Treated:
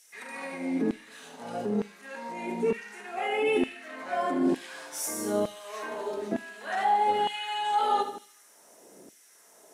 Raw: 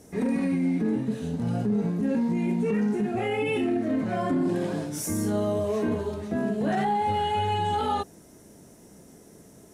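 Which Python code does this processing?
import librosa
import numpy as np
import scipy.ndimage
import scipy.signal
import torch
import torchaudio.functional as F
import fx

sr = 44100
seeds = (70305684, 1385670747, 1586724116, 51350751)

y = fx.echo_feedback(x, sr, ms=76, feedback_pct=52, wet_db=-10.0)
y = fx.filter_lfo_highpass(y, sr, shape='saw_down', hz=1.1, low_hz=270.0, high_hz=2700.0, q=1.2)
y = fx.rev_schroeder(y, sr, rt60_s=0.38, comb_ms=27, drr_db=19.5)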